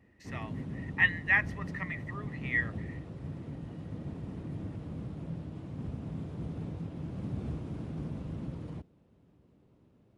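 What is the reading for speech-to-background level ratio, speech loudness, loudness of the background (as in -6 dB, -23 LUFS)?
10.5 dB, -30.0 LUFS, -40.5 LUFS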